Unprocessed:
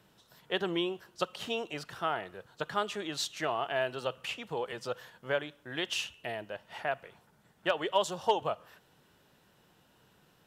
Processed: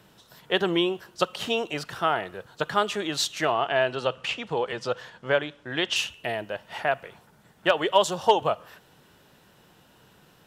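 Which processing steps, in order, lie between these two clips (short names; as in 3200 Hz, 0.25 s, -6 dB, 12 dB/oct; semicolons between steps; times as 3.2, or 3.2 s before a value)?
3.51–5.96 LPF 6700 Hz 12 dB/oct; gain +8 dB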